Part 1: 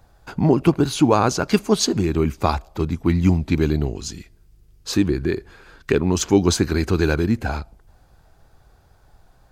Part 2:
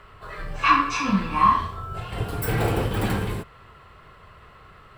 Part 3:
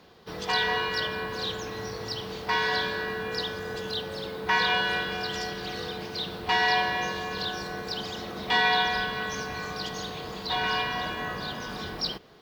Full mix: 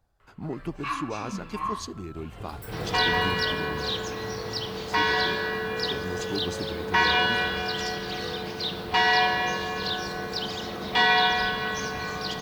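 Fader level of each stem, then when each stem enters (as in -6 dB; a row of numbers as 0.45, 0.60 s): -17.5, -13.5, +2.5 dB; 0.00, 0.20, 2.45 s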